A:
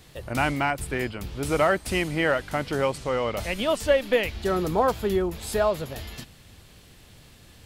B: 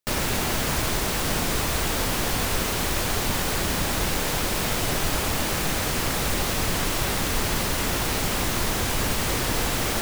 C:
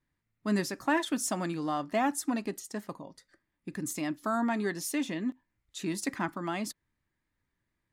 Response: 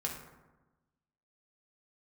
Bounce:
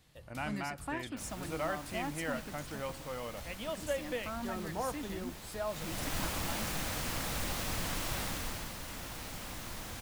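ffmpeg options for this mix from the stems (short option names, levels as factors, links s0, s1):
-filter_complex "[0:a]volume=0.168,asplit=2[s0][s1];[s1]volume=0.168[s2];[1:a]adelay=1100,volume=0.282,afade=t=in:st=5.66:d=0.5:silence=0.223872,afade=t=out:st=8.21:d=0.5:silence=0.446684[s3];[2:a]volume=0.282[s4];[3:a]atrim=start_sample=2205[s5];[s2][s5]afir=irnorm=-1:irlink=0[s6];[s0][s3][s4][s6]amix=inputs=4:normalize=0,equalizer=f=400:t=o:w=0.27:g=-8"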